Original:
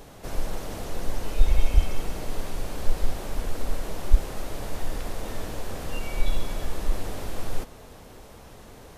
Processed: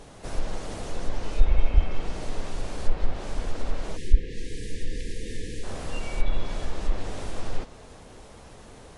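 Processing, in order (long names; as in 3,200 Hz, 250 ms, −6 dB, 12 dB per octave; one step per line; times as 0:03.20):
time-frequency box erased 0:03.97–0:05.64, 530–1,600 Hz
treble cut that deepens with the level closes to 2,800 Hz, closed at −13 dBFS
MP3 48 kbit/s 24,000 Hz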